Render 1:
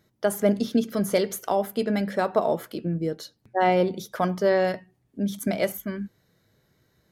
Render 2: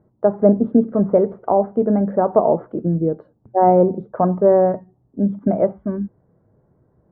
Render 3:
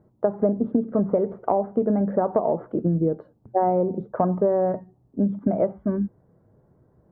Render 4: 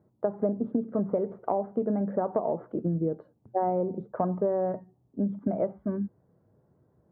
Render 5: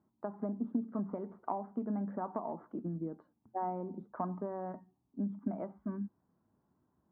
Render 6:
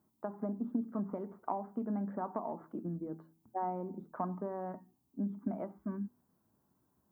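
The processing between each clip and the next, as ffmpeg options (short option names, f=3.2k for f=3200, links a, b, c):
-af "lowpass=f=1k:w=0.5412,lowpass=f=1k:w=1.3066,volume=8dB"
-af "acompressor=threshold=-17dB:ratio=10"
-af "highpass=67,volume=-6dB"
-af "equalizer=f=125:t=o:w=1:g=-9,equalizer=f=250:t=o:w=1:g=7,equalizer=f=500:t=o:w=1:g=-12,equalizer=f=1k:t=o:w=1:g=8,volume=-8dB"
-af "aemphasis=mode=production:type=50kf,bandreject=f=81.18:t=h:w=4,bandreject=f=162.36:t=h:w=4,bandreject=f=243.54:t=h:w=4,bandreject=f=324.72:t=h:w=4,bandreject=f=405.9:t=h:w=4"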